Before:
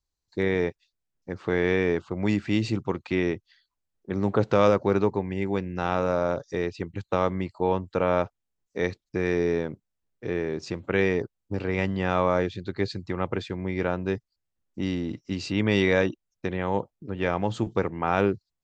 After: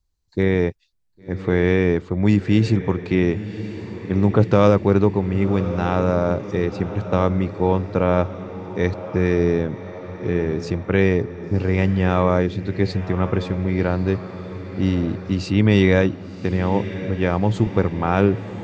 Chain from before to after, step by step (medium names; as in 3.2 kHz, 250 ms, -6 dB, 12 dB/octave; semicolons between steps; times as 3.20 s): bass shelf 220 Hz +11 dB; on a send: echo that smears into a reverb 1090 ms, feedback 59%, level -13 dB; on the sum: trim +2.5 dB